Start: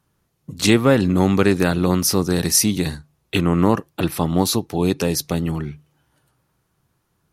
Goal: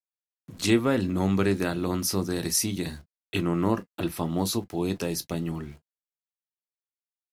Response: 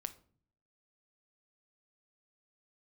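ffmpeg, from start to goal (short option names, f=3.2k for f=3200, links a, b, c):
-filter_complex "[0:a]aeval=exprs='val(0)*gte(abs(val(0)),0.00891)':c=same[a];[1:a]atrim=start_sample=2205,atrim=end_sample=3969,asetrate=88200,aresample=44100[b];[a][b]afir=irnorm=-1:irlink=0"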